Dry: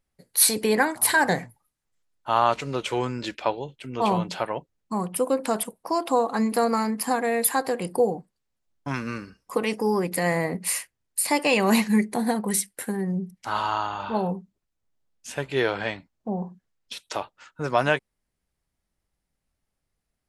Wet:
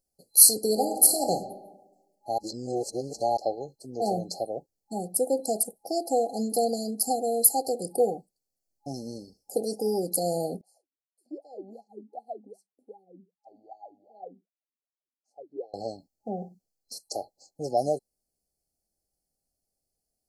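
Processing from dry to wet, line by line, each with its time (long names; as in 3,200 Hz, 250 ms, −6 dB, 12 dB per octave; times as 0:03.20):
0:00.70–0:01.31: thrown reverb, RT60 1.1 s, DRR 5 dB
0:02.38–0:03.37: reverse
0:10.61–0:15.74: LFO wah 2.6 Hz 240–1,100 Hz, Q 16
whole clip: bass and treble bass −8 dB, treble −4 dB; brick-wall band-stop 830–4,100 Hz; high-shelf EQ 5,200 Hz +11.5 dB; level −1.5 dB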